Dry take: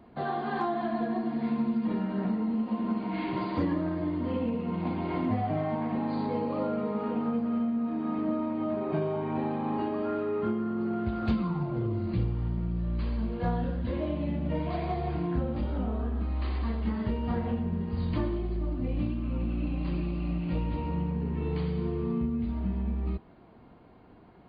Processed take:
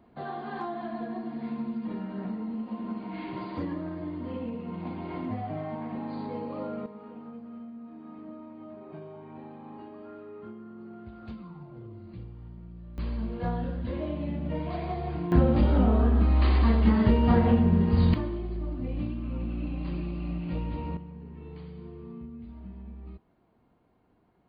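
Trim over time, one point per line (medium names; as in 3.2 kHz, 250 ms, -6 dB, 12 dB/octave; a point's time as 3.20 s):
-5 dB
from 6.86 s -14 dB
from 12.98 s -1.5 dB
from 15.32 s +9 dB
from 18.14 s -2 dB
from 20.97 s -12.5 dB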